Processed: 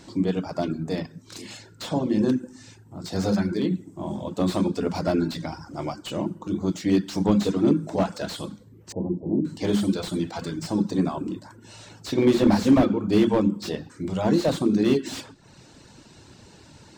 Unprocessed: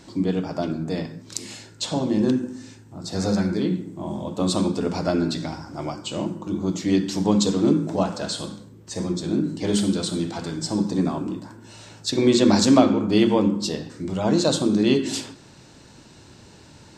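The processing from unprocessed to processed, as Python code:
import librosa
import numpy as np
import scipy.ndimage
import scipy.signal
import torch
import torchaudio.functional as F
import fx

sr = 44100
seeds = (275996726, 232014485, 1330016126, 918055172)

y = fx.ellip_lowpass(x, sr, hz=900.0, order=4, stop_db=40, at=(8.92, 9.45))
y = fx.dereverb_blind(y, sr, rt60_s=0.58)
y = fx.slew_limit(y, sr, full_power_hz=90.0)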